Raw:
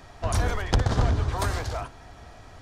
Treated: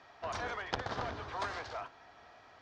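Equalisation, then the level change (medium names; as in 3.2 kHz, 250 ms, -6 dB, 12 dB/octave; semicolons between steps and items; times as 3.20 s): high-pass 1.2 kHz 6 dB/octave; low-pass 5.8 kHz 24 dB/octave; treble shelf 2.9 kHz -10.5 dB; -1.5 dB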